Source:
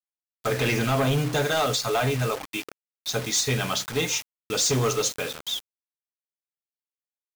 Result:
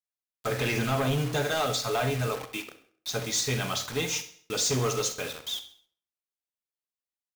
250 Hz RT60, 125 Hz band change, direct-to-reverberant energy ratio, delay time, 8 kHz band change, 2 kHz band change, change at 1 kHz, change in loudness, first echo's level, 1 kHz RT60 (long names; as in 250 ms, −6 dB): 0.55 s, −3.5 dB, 10.0 dB, 66 ms, −3.5 dB, −3.5 dB, −3.5 dB, −3.5 dB, −16.0 dB, 0.50 s